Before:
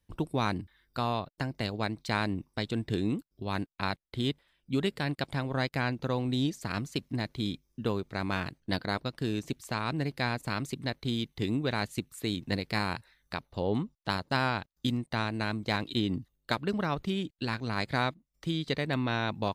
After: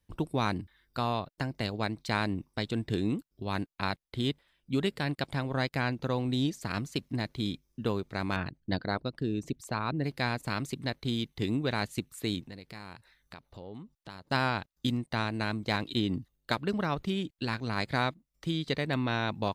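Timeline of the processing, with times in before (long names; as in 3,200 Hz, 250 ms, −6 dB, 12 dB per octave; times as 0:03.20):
0:08.36–0:10.04: spectral envelope exaggerated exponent 1.5
0:12.41–0:14.27: downward compressor 2.5 to 1, threshold −48 dBFS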